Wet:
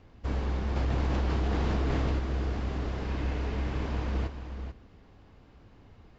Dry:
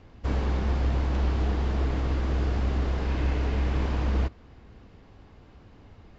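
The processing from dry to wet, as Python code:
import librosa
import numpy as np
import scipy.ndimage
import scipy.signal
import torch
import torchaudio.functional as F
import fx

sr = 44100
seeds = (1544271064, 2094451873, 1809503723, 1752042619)

p1 = x + fx.echo_single(x, sr, ms=438, db=-9.5, dry=0)
p2 = fx.env_flatten(p1, sr, amount_pct=100, at=(0.76, 2.19))
y = p2 * 10.0 ** (-4.0 / 20.0)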